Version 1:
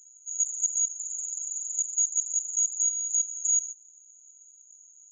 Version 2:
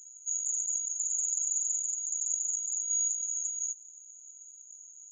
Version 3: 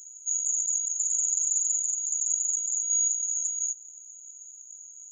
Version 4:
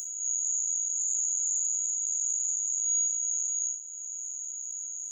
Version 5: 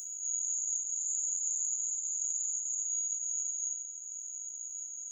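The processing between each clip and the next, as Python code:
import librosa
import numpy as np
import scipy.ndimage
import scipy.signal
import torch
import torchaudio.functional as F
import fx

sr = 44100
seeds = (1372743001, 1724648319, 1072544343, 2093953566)

y1 = fx.over_compress(x, sr, threshold_db=-31.0, ratio=-1.0)
y2 = fx.high_shelf(y1, sr, hz=6800.0, db=9.0)
y3 = fx.spec_blur(y2, sr, span_ms=114.0)
y3 = fx.band_squash(y3, sr, depth_pct=70)
y4 = fx.rev_fdn(y3, sr, rt60_s=1.9, lf_ratio=1.0, hf_ratio=0.85, size_ms=12.0, drr_db=3.0)
y4 = y4 * librosa.db_to_amplitude(-6.0)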